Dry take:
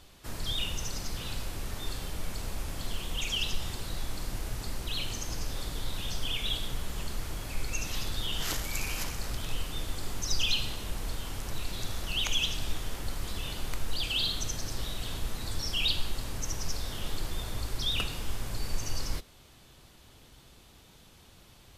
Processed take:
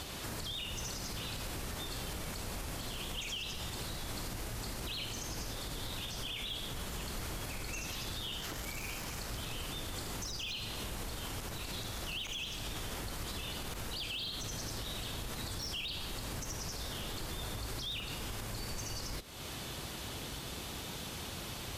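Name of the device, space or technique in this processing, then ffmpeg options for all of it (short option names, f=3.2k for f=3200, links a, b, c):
podcast mastering chain: -af "highpass=f=77:p=1,deesser=0.8,acompressor=threshold=-52dB:ratio=3,alimiter=level_in=22dB:limit=-24dB:level=0:latency=1:release=93,volume=-22dB,volume=15.5dB" -ar 44100 -c:a libmp3lame -b:a 96k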